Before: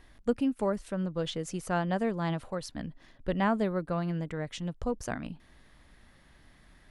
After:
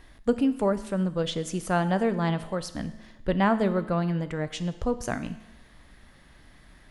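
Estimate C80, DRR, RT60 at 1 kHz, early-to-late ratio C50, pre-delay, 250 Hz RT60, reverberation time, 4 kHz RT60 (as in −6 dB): 16.0 dB, 11.5 dB, 1.0 s, 14.0 dB, 5 ms, 1.0 s, 1.0 s, 1.0 s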